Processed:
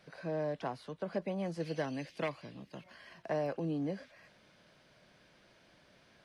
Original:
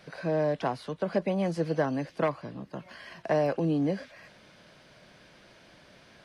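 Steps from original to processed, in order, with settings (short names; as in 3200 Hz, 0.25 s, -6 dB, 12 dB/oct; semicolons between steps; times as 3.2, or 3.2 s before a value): 1.6–2.84 resonant high shelf 1800 Hz +7 dB, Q 1.5; gain -8.5 dB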